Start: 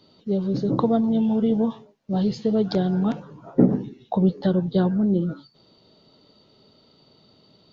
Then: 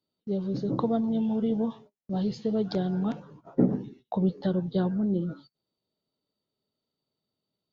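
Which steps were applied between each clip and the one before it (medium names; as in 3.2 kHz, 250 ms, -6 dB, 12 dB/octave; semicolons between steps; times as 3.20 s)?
gate -43 dBFS, range -23 dB; trim -6 dB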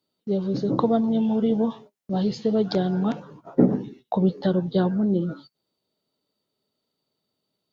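bass shelf 150 Hz -7.5 dB; trim +7 dB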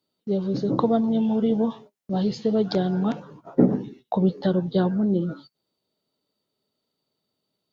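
no audible change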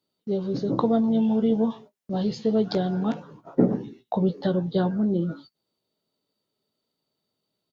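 doubling 18 ms -11.5 dB; trim -1.5 dB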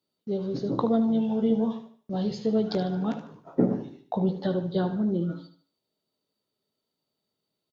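feedback delay 75 ms, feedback 37%, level -11 dB; trim -3 dB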